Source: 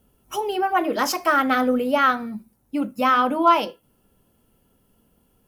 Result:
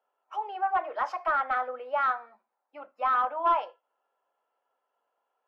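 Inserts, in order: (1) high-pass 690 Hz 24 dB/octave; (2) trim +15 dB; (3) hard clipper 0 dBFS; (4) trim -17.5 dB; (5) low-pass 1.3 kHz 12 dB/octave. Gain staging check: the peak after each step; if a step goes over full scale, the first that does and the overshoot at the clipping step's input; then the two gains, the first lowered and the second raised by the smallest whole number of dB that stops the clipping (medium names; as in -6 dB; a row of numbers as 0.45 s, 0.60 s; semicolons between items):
-6.0 dBFS, +9.0 dBFS, 0.0 dBFS, -17.5 dBFS, -17.0 dBFS; step 2, 9.0 dB; step 2 +6 dB, step 4 -8.5 dB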